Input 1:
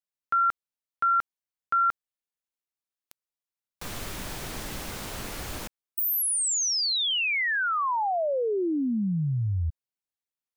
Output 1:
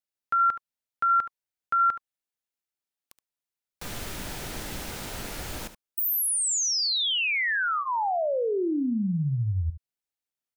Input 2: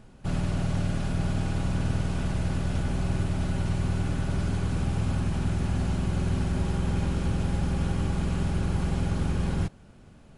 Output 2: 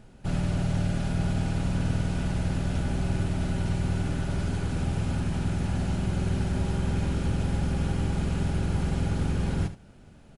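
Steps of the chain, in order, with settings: band-stop 1.1 kHz, Q 11; delay 73 ms -12.5 dB

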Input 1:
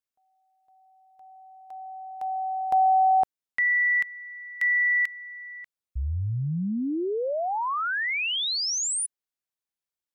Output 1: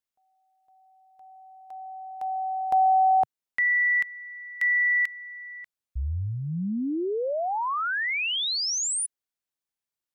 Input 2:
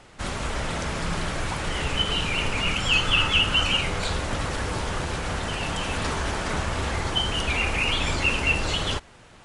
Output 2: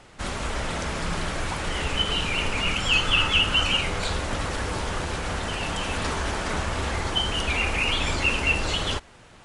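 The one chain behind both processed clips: dynamic bell 130 Hz, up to -4 dB, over -48 dBFS, Q 2.5

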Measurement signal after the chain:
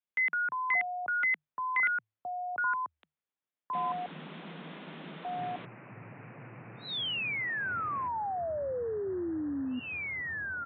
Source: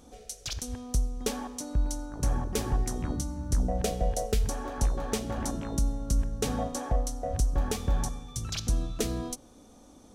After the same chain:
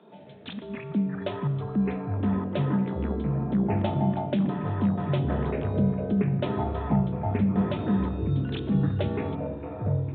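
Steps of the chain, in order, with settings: frequency shift +150 Hz; resampled via 8 kHz; ever faster or slower copies 88 ms, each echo -6 st, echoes 3

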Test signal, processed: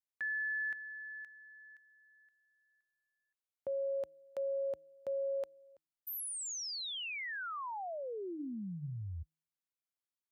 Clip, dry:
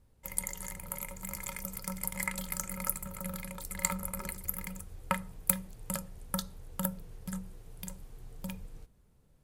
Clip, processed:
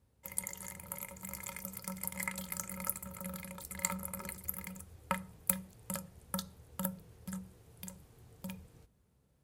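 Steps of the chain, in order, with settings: high-pass 56 Hz 24 dB/octave; de-hum 159 Hz, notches 2; trim -3.5 dB

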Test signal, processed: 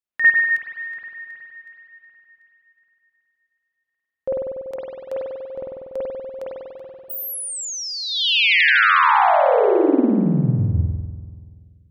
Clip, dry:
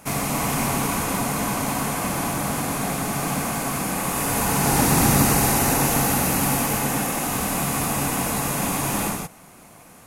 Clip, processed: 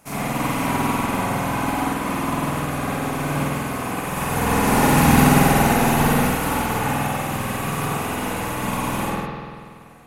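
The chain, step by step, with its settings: reverb removal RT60 0.98 s; spring tank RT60 2.1 s, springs 48 ms, chirp 50 ms, DRR -9 dB; upward expansion 1.5:1, over -23 dBFS; trim -1 dB

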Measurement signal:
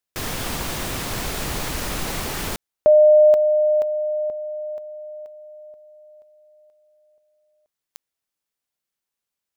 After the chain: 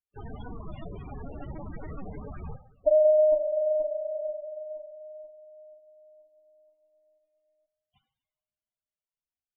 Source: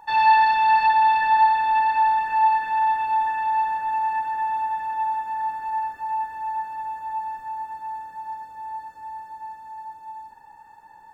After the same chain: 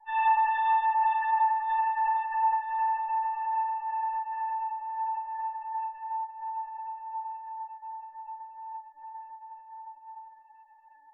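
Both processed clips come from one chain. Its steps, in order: LPC vocoder at 8 kHz pitch kept; two-slope reverb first 0.76 s, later 2.9 s, DRR 8.5 dB; loudest bins only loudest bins 16; trim -8.5 dB

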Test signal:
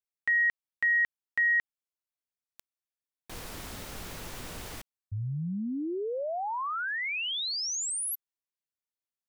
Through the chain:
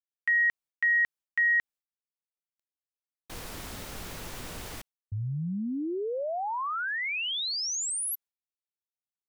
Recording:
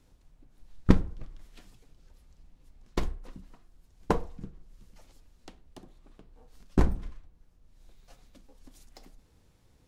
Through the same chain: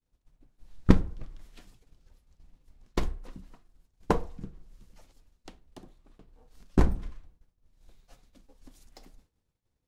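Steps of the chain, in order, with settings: expander -49 dBFS, range -33 dB; trim +1 dB

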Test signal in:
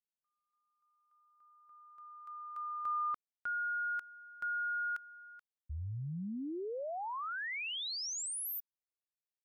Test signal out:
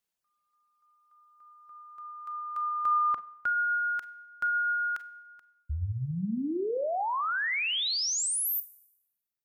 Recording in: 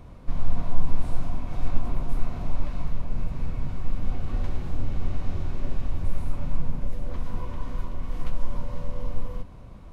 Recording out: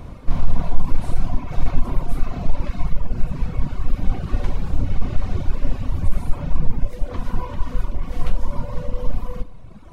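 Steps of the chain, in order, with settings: Schroeder reverb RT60 0.89 s, combs from 32 ms, DRR 6.5 dB; reverb removal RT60 2 s; in parallel at -1 dB: hard clipper -16.5 dBFS; on the sum: trim +4 dB

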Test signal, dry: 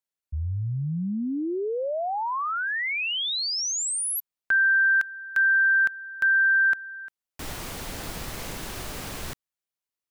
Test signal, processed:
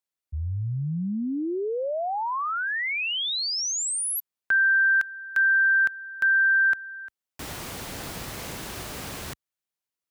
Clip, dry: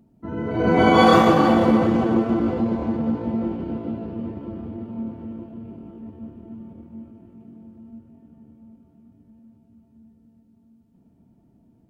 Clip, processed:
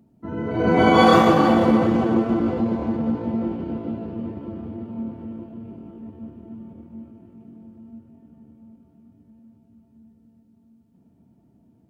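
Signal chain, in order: high-pass 55 Hz

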